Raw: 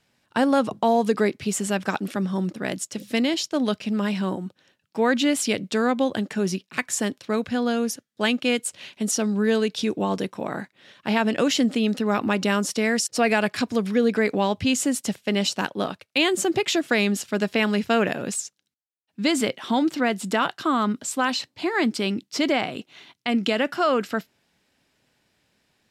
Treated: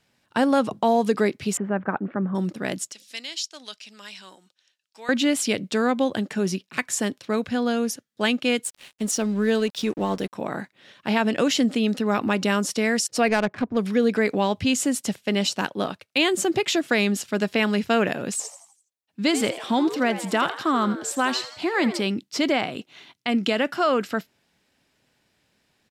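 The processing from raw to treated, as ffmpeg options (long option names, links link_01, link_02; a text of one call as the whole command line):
ffmpeg -i in.wav -filter_complex "[0:a]asettb=1/sr,asplit=3[link_01][link_02][link_03];[link_01]atrim=end=1.574[link_04];[link_02]atrim=start=1.57:end=2.35,asetpts=PTS-STARTPTS,afade=type=in:duration=0.004:curve=qsin,afade=type=out:start_time=0.776:duration=0.004:curve=qsin,lowpass=frequency=1700:width=0.5412,lowpass=frequency=1700:width=1.3066[link_05];[link_03]atrim=start=2.346[link_06];[link_04][link_05]acrossfade=duration=0.004:curve1=hsin:curve2=qsin[link_07];[link_07][link_06]acrossfade=duration=0.004:curve1=qsin:curve2=hsin,asettb=1/sr,asplit=3[link_08][link_09][link_10];[link_08]atrim=end=2.924[link_11];[link_09]atrim=start=2.92:end=5.09,asetpts=PTS-STARTPTS,afade=type=in:duration=0.004:curve=qsin,afade=type=out:start_time=2.166:duration=0.004:curve=qsin,bandpass=frequency=5800:width_type=q:width=0.9[link_12];[link_10]atrim=start=5.086[link_13];[link_11][link_12]acrossfade=duration=0.004:curve1=hsin:curve2=qsin[link_14];[link_14][link_13]acrossfade=duration=0.004:curve1=qsin:curve2=hsin,asettb=1/sr,asplit=3[link_15][link_16][link_17];[link_15]atrim=end=8.644[link_18];[link_16]atrim=start=8.64:end=10.33,asetpts=PTS-STARTPTS,afade=type=in:duration=0.004:curve=qsin,afade=type=out:start_time=1.686:duration=0.004:curve=qsin,aeval=exprs='sgn(val(0))*max(abs(val(0))-0.00708,0)':channel_layout=same[link_19];[link_17]atrim=start=10.326[link_20];[link_18][link_19]acrossfade=duration=0.004:curve1=hsin:curve2=qsin[link_21];[link_21][link_20]acrossfade=duration=0.004:curve1=qsin:curve2=hsin,asettb=1/sr,asplit=3[link_22][link_23][link_24];[link_22]atrim=end=13.284[link_25];[link_23]atrim=start=13.28:end=13.77,asetpts=PTS-STARTPTS,afade=type=in:duration=0.004:curve=qsin,afade=type=out:start_time=0.486:duration=0.004:curve=qsin,adynamicsmooth=sensitivity=1:basefreq=800[link_26];[link_24]atrim=start=13.766[link_27];[link_25][link_26]acrossfade=duration=0.004:curve1=hsin:curve2=qsin[link_28];[link_28][link_27]acrossfade=duration=0.004:curve1=qsin:curve2=hsin,asplit=3[link_29][link_30][link_31];[link_29]afade=type=out:start_time=18.39:duration=0.02[link_32];[link_30]asplit=6[link_33][link_34][link_35][link_36][link_37][link_38];[link_34]adelay=83,afreqshift=120,volume=-12.5dB[link_39];[link_35]adelay=166,afreqshift=240,volume=-19.1dB[link_40];[link_36]adelay=249,afreqshift=360,volume=-25.6dB[link_41];[link_37]adelay=332,afreqshift=480,volume=-32.2dB[link_42];[link_38]adelay=415,afreqshift=600,volume=-38.7dB[link_43];[link_33][link_39][link_40][link_41][link_42][link_43]amix=inputs=6:normalize=0,afade=type=in:start_time=18.39:duration=0.02,afade=type=out:start_time=22.01:duration=0.02[link_44];[link_31]afade=type=in:start_time=22.01:duration=0.02[link_45];[link_32][link_44][link_45]amix=inputs=3:normalize=0" out.wav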